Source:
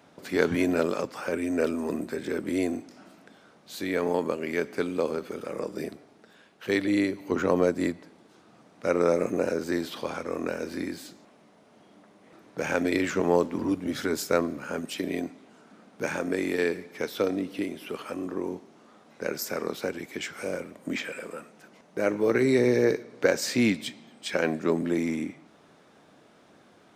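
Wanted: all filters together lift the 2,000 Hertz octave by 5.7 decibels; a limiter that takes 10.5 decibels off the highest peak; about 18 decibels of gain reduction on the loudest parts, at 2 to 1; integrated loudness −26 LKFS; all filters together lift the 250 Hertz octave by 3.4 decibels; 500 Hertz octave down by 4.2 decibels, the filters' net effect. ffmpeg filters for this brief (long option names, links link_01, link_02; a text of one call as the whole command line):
ffmpeg -i in.wav -af "equalizer=frequency=250:width_type=o:gain=6.5,equalizer=frequency=500:width_type=o:gain=-8,equalizer=frequency=2000:width_type=o:gain=7.5,acompressor=threshold=-50dB:ratio=2,volume=17.5dB,alimiter=limit=-14.5dB:level=0:latency=1" out.wav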